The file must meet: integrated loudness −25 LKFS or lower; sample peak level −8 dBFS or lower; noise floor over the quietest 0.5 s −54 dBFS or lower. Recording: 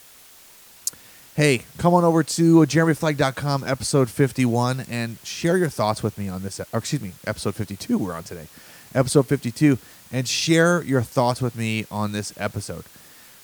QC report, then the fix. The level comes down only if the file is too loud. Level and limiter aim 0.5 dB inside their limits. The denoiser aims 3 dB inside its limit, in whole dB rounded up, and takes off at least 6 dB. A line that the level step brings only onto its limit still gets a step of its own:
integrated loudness −22.0 LKFS: out of spec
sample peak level −3.0 dBFS: out of spec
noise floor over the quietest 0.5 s −48 dBFS: out of spec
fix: broadband denoise 6 dB, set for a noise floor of −48 dBFS
level −3.5 dB
brickwall limiter −8.5 dBFS

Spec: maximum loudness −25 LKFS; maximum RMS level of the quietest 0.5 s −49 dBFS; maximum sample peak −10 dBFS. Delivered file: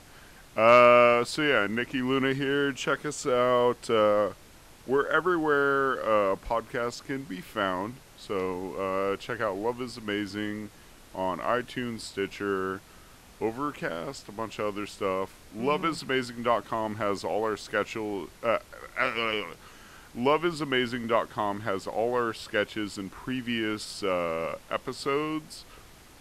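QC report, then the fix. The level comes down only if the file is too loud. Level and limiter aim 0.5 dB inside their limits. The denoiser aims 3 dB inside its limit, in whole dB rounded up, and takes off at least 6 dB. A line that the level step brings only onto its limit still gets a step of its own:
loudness −28.0 LKFS: in spec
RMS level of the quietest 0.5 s −52 dBFS: in spec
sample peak −6.5 dBFS: out of spec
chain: brickwall limiter −10.5 dBFS

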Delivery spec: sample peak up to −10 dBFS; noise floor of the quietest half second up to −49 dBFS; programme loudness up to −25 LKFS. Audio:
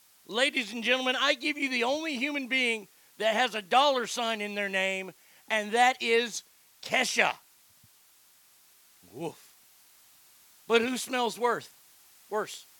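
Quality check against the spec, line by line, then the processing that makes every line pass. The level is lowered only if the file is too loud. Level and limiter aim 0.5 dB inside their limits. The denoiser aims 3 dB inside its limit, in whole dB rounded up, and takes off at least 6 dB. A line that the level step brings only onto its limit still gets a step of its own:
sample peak −7.5 dBFS: out of spec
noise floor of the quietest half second −61 dBFS: in spec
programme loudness −27.5 LKFS: in spec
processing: brickwall limiter −10.5 dBFS

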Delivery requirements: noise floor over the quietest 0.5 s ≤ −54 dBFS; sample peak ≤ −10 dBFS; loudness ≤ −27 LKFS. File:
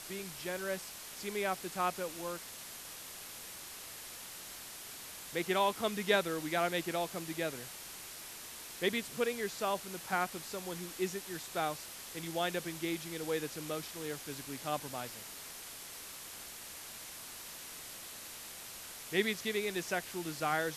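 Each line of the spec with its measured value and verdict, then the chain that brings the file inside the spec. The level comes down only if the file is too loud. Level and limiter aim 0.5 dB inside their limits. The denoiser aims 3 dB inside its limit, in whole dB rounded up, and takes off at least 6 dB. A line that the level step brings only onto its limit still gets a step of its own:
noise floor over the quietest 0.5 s −48 dBFS: out of spec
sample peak −15.0 dBFS: in spec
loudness −38.0 LKFS: in spec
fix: broadband denoise 9 dB, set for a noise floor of −48 dBFS

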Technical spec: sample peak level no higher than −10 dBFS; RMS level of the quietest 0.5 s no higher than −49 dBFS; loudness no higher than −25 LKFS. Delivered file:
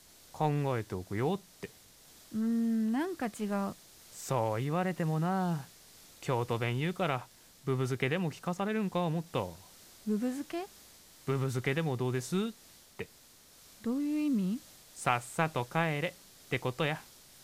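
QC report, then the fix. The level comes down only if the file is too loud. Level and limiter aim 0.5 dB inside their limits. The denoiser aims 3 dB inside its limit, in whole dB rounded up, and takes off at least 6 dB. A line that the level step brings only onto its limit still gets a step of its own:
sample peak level −12.5 dBFS: in spec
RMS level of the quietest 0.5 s −59 dBFS: in spec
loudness −33.5 LKFS: in spec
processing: no processing needed

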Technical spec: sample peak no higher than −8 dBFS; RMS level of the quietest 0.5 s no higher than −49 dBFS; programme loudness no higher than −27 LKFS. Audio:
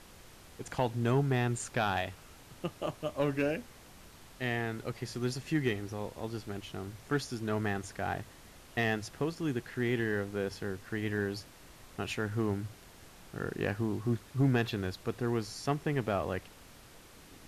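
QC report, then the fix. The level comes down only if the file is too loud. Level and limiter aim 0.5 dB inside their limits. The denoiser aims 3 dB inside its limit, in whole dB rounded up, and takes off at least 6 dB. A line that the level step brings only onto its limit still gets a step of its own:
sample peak −18.0 dBFS: in spec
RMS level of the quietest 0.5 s −54 dBFS: in spec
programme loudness −34.0 LKFS: in spec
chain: no processing needed

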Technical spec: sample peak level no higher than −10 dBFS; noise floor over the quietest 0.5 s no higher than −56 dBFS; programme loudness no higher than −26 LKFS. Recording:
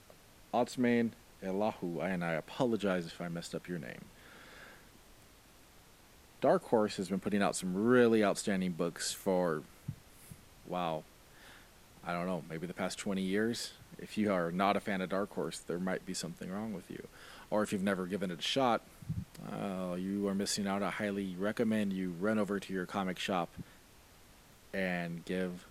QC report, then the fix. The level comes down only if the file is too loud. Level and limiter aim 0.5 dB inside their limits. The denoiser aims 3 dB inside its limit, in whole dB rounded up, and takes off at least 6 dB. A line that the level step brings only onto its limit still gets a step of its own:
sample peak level −14.0 dBFS: in spec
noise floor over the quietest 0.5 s −60 dBFS: in spec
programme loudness −35.0 LKFS: in spec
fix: no processing needed

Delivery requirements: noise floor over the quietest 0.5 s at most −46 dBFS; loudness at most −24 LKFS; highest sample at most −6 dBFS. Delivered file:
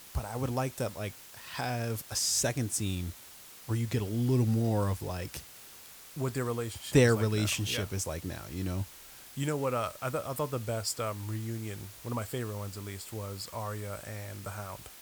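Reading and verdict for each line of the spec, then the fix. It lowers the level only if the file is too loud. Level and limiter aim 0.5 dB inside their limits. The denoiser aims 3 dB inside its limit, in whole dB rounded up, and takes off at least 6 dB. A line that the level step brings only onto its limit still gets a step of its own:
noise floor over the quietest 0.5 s −51 dBFS: in spec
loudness −32.5 LKFS: in spec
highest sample −10.5 dBFS: in spec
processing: no processing needed

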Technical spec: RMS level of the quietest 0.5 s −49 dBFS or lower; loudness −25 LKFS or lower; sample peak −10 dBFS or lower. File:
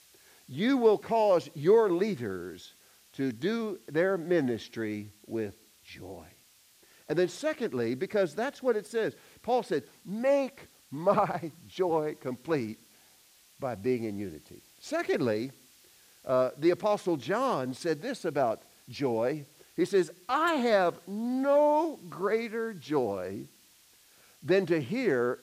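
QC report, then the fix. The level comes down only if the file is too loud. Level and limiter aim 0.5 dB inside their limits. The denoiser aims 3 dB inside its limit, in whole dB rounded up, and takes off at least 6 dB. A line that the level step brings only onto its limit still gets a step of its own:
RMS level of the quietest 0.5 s −61 dBFS: in spec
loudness −29.5 LKFS: in spec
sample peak −12.0 dBFS: in spec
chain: no processing needed

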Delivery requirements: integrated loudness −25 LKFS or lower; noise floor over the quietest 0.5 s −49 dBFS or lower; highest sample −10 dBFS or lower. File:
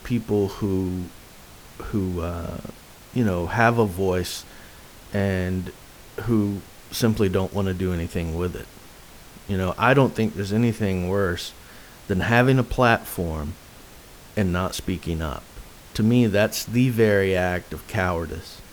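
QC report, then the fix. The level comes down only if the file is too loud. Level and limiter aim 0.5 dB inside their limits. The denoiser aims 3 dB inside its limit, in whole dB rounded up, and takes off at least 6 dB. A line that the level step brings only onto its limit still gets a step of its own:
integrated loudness −23.5 LKFS: out of spec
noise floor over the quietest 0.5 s −45 dBFS: out of spec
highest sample −4.5 dBFS: out of spec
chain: broadband denoise 6 dB, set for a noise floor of −45 dBFS
level −2 dB
brickwall limiter −10.5 dBFS

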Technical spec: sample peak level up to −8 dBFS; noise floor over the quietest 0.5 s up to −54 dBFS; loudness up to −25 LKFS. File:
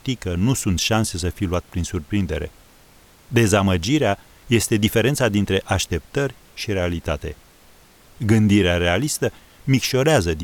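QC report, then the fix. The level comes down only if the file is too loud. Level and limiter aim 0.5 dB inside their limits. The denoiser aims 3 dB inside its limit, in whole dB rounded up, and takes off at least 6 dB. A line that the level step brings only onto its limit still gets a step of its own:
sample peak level −4.5 dBFS: out of spec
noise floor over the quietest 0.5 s −50 dBFS: out of spec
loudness −20.5 LKFS: out of spec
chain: level −5 dB

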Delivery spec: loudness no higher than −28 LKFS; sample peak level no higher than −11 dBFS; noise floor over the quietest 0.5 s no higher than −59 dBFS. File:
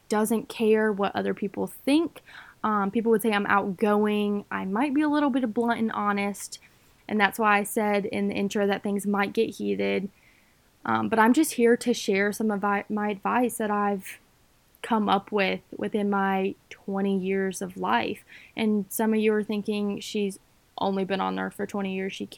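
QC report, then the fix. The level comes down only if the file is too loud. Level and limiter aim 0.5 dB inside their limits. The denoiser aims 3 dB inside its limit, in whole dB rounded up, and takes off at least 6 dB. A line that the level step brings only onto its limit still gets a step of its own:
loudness −26.0 LKFS: out of spec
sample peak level −4.0 dBFS: out of spec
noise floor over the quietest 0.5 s −62 dBFS: in spec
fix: level −2.5 dB
brickwall limiter −11.5 dBFS

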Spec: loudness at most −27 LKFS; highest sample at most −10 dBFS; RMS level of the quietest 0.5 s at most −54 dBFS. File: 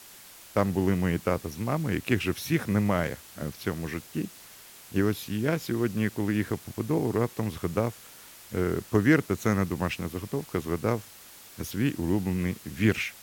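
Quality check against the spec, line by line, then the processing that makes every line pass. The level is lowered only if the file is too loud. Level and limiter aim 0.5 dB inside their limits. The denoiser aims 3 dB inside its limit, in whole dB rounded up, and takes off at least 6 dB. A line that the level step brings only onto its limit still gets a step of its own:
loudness −28.5 LKFS: in spec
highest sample −8.0 dBFS: out of spec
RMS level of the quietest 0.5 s −49 dBFS: out of spec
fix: broadband denoise 8 dB, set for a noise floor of −49 dBFS
brickwall limiter −10.5 dBFS

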